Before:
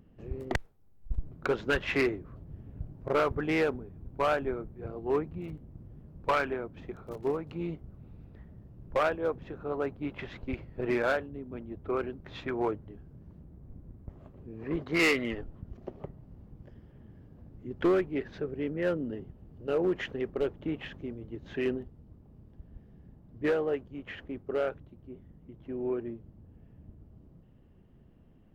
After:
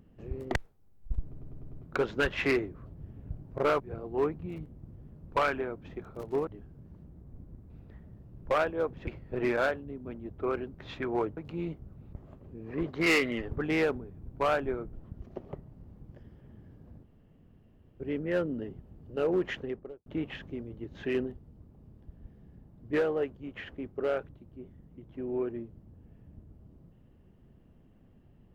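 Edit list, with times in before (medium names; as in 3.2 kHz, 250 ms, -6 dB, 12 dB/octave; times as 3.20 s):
1.23 s: stutter 0.10 s, 6 plays
3.30–4.72 s: move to 15.44 s
7.39–8.15 s: swap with 12.83–14.06 s
9.52–10.53 s: delete
17.54–18.51 s: room tone
20.03–20.57 s: studio fade out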